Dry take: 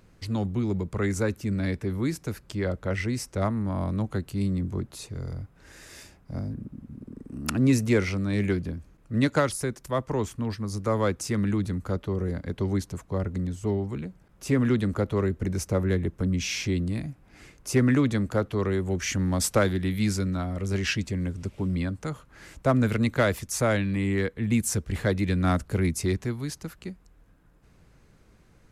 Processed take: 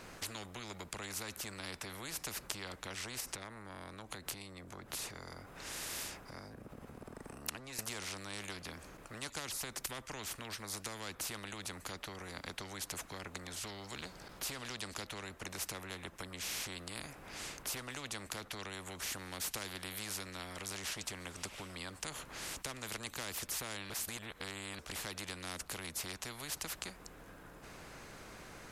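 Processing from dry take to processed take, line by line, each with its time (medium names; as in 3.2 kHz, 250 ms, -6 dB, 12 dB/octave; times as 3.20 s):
3.20–7.79 s: compression, threshold -40 dBFS
13.56–15.07 s: peaking EQ 4.5 kHz +10.5 dB
23.90–24.79 s: reverse
whole clip: compression 2.5:1, threshold -33 dBFS; spectrum-flattening compressor 4:1; trim +5 dB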